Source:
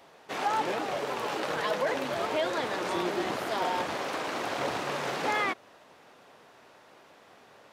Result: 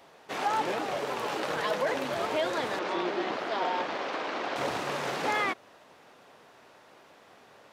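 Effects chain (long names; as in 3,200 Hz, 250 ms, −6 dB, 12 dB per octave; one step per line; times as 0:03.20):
0:02.79–0:04.56: three-way crossover with the lows and the highs turned down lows −15 dB, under 190 Hz, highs −23 dB, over 5,500 Hz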